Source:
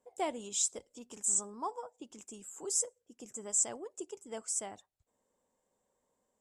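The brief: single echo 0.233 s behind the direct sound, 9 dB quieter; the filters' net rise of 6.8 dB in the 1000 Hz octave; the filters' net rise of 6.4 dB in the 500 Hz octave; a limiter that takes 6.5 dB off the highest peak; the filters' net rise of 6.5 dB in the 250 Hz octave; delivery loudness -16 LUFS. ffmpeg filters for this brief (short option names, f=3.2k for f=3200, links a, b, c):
-af "equalizer=f=250:t=o:g=6.5,equalizer=f=500:t=o:g=4.5,equalizer=f=1k:t=o:g=6.5,alimiter=limit=-23.5dB:level=0:latency=1,aecho=1:1:233:0.355,volume=19.5dB"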